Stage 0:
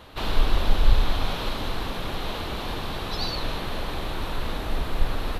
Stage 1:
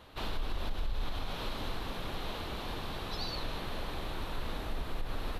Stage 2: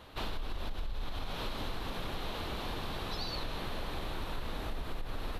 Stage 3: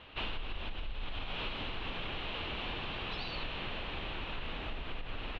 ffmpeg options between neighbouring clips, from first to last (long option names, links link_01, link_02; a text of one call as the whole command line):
ffmpeg -i in.wav -af "alimiter=limit=-17.5dB:level=0:latency=1:release=106,volume=-8dB" out.wav
ffmpeg -i in.wav -af "acompressor=threshold=-34dB:ratio=6,volume=2dB" out.wav
ffmpeg -i in.wav -af "lowpass=frequency=2800:width_type=q:width=3.6,aecho=1:1:76:0.237,volume=-3dB" out.wav